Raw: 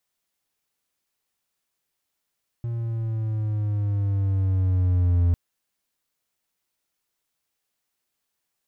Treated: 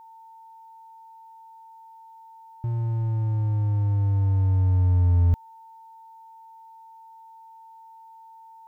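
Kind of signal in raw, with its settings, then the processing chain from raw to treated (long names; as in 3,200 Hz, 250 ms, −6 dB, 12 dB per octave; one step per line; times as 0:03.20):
pitch glide with a swell triangle, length 2.70 s, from 118 Hz, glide −5.5 semitones, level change +9.5 dB, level −14 dB
in parallel at −9.5 dB: soft clipping −22.5 dBFS
on the sum: steady tone 900 Hz −45 dBFS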